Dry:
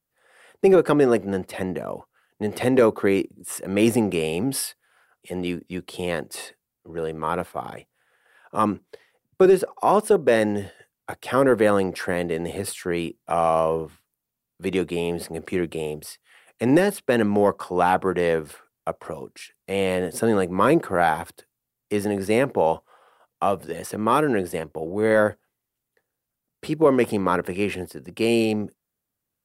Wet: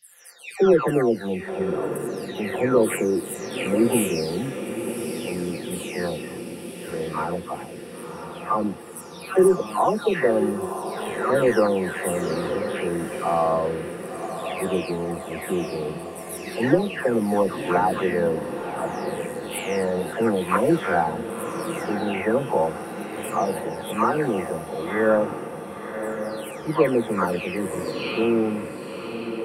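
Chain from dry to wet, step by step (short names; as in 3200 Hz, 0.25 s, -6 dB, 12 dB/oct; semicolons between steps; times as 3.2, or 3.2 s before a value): spectral delay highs early, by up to 0.612 s; diffused feedback echo 1.052 s, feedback 60%, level -8.5 dB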